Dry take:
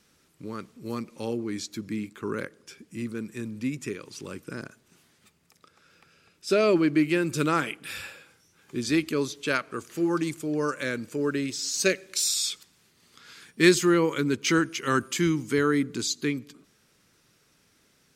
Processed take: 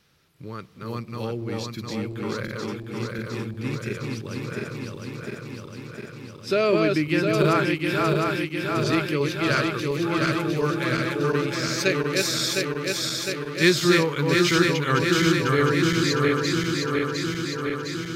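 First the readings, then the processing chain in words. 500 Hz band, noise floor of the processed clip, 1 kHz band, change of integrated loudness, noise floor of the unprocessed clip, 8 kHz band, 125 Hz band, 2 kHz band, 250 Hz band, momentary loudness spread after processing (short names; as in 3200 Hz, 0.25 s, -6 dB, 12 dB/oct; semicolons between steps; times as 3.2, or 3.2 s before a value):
+4.0 dB, -41 dBFS, +5.5 dB, +3.0 dB, -65 dBFS, -1.0 dB, +8.5 dB, +6.0 dB, +2.5 dB, 15 LU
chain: regenerating reverse delay 0.354 s, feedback 83%, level -2.5 dB; ten-band EQ 125 Hz +7 dB, 250 Hz -7 dB, 4000 Hz +3 dB, 8000 Hz -10 dB; gain +1.5 dB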